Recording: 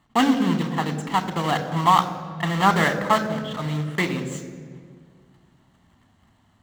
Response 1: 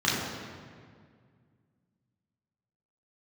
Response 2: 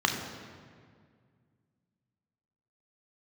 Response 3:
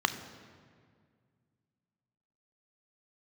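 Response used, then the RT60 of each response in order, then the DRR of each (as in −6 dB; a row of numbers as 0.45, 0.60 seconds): 3; 2.0, 2.0, 2.0 seconds; −8.0, 2.0, 9.0 decibels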